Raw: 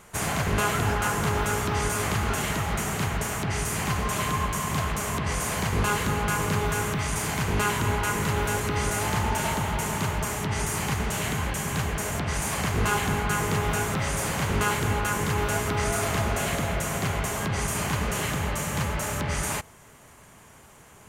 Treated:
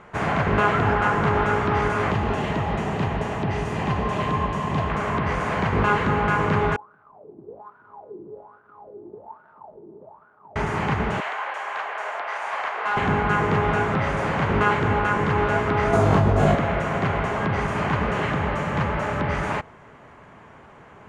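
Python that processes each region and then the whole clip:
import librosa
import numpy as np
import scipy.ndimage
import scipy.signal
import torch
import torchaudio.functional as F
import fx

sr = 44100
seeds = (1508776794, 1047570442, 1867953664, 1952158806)

y = fx.chain(x, sr, fx.peak_eq(hz=1400.0, db=-9.0, octaves=0.6),
    fx.notch(hz=2200.0, q=13.0), at=(2.11, 4.9))
y = fx.chain(y, sr, fx.median_filter(points=25),
    fx.wah_lfo(hz=1.2, low_hz=340.0, high_hz=1500.0, q=12.0),
    fx.peak_eq(hz=1900.0, db=-11.5, octaves=2.8), at=(6.76, 10.56))
y = fx.chain(y, sr, fx.highpass(hz=630.0, slope=24),
    fx.high_shelf(hz=3300.0, db=-4.5),
    fx.clip_hard(threshold_db=-25.0), at=(11.2, 12.97))
y = fx.chain(y, sr, fx.peak_eq(hz=2100.0, db=-11.0, octaves=1.9),
    fx.room_flutter(wall_m=3.4, rt60_s=0.28),
    fx.env_flatten(amount_pct=100), at=(15.93, 16.55))
y = scipy.signal.sosfilt(scipy.signal.butter(2, 1900.0, 'lowpass', fs=sr, output='sos'), y)
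y = fx.low_shelf(y, sr, hz=100.0, db=-9.5)
y = F.gain(torch.from_numpy(y), 7.0).numpy()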